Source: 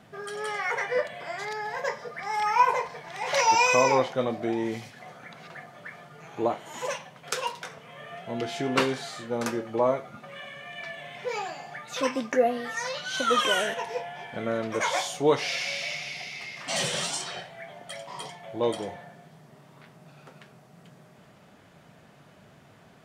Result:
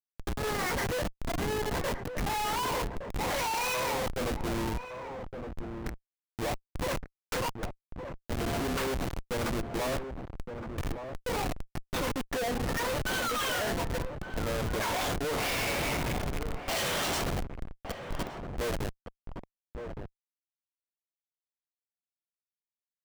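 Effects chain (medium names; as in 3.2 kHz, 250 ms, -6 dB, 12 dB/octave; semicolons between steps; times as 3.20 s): high-pass 190 Hz 6 dB/octave; bass shelf 310 Hz -7.5 dB; Schmitt trigger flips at -31.5 dBFS; echo from a far wall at 200 m, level -8 dB; waveshaping leveller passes 1; trim -2 dB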